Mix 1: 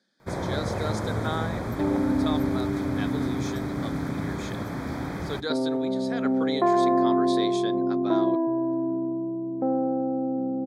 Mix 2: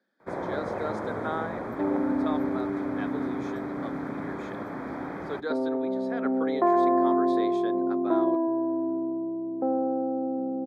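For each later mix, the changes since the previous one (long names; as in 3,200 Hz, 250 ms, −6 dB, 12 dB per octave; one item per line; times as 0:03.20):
master: add three-way crossover with the lows and the highs turned down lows −16 dB, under 220 Hz, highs −17 dB, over 2,200 Hz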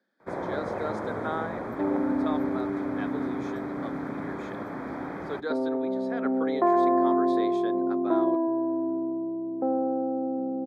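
nothing changed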